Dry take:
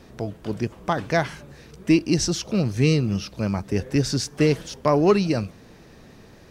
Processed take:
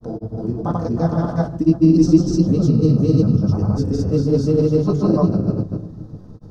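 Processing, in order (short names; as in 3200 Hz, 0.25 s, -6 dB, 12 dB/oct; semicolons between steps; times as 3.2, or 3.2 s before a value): EQ curve 210 Hz 0 dB, 1300 Hz -6 dB, 2200 Hz -28 dB, 6300 Hz +13 dB; shoebox room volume 570 m³, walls mixed, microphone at 2 m; grains, spray 0.316 s, pitch spread up and down by 0 st; air absorption 380 m; gain +2.5 dB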